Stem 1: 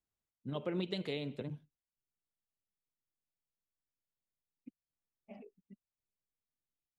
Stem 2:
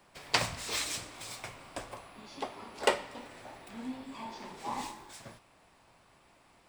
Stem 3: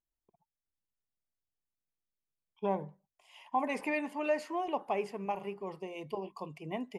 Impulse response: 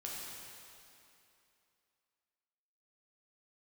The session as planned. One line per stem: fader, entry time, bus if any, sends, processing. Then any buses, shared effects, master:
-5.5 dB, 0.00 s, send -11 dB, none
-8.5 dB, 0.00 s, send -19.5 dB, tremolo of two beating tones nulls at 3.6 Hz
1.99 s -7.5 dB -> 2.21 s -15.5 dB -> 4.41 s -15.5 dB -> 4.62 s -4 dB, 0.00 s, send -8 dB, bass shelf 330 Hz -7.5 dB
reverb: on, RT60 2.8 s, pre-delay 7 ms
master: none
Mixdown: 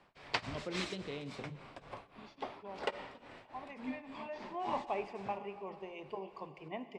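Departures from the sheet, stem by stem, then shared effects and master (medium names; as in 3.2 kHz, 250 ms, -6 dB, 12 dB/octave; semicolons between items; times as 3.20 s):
stem 2 -8.5 dB -> -2.0 dB; master: extra low-pass 3.8 kHz 12 dB/octave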